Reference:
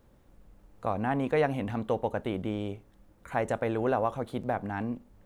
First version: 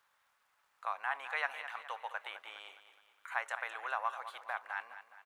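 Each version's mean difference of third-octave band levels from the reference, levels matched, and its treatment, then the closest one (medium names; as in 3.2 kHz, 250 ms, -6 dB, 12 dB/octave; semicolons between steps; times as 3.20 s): 15.0 dB: high-pass 1.1 kHz 24 dB/octave; treble shelf 3.6 kHz -9 dB; crackle 180 per s -70 dBFS; on a send: feedback delay 208 ms, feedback 46%, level -12 dB; on the sum: trim +3 dB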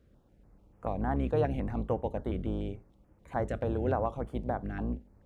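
4.0 dB: octave divider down 2 oct, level +2 dB; high-pass 44 Hz; treble shelf 6 kHz -11.5 dB; step-sequenced notch 6.9 Hz 910–3900 Hz; trim -2.5 dB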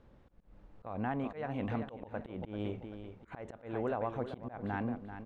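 6.5 dB: low-pass 3.7 kHz 12 dB/octave; compression 6:1, threshold -31 dBFS, peak gain reduction 10 dB; on a send: feedback delay 388 ms, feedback 29%, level -10.5 dB; on the sum: slow attack 162 ms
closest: second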